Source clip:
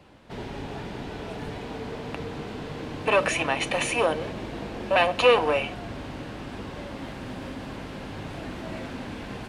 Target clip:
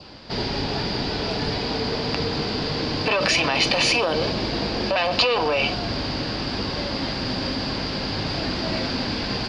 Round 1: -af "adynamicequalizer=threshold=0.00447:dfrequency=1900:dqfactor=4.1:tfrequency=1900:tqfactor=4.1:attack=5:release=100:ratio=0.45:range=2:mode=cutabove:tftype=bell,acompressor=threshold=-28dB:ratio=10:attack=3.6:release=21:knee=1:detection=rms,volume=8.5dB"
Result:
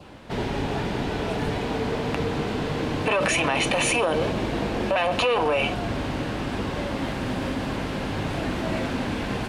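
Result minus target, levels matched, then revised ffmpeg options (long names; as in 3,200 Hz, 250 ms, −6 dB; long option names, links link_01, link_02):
4,000 Hz band −6.0 dB
-af "adynamicequalizer=threshold=0.00447:dfrequency=1900:dqfactor=4.1:tfrequency=1900:tqfactor=4.1:attack=5:release=100:ratio=0.45:range=2:mode=cutabove:tftype=bell,acompressor=threshold=-28dB:ratio=10:attack=3.6:release=21:knee=1:detection=rms,lowpass=frequency=4800:width_type=q:width=13,volume=8.5dB"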